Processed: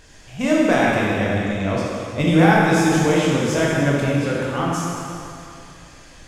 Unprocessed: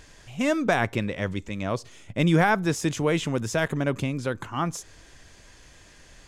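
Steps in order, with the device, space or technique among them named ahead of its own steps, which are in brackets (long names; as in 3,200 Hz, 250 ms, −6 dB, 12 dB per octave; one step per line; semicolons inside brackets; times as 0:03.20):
stairwell (convolution reverb RT60 2.7 s, pre-delay 14 ms, DRR −5.5 dB)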